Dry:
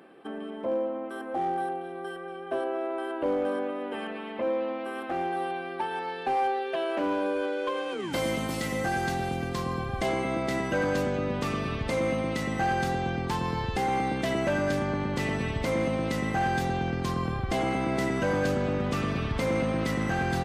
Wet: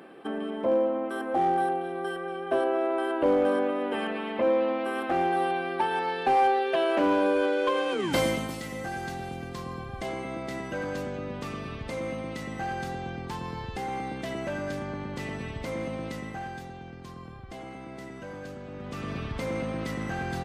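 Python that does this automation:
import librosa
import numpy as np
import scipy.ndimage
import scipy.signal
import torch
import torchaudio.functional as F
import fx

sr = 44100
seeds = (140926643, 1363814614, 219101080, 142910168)

y = fx.gain(x, sr, db=fx.line((8.19, 4.5), (8.61, -6.0), (16.05, -6.0), (16.73, -14.0), (18.66, -14.0), (19.13, -4.5)))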